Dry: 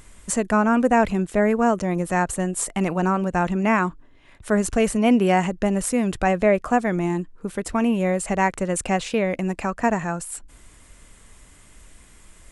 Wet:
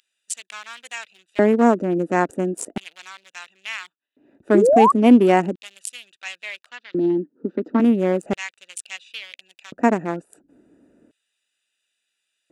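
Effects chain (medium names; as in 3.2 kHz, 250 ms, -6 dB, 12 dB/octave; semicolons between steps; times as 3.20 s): local Wiener filter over 41 samples; 6.69–7.80 s: cabinet simulation 190–4600 Hz, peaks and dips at 250 Hz +6 dB, 720 Hz -6 dB, 2.4 kHz -6 dB; LFO high-pass square 0.36 Hz 280–3300 Hz; 4.54–4.92 s: painted sound rise 320–1200 Hz -16 dBFS; trim +2 dB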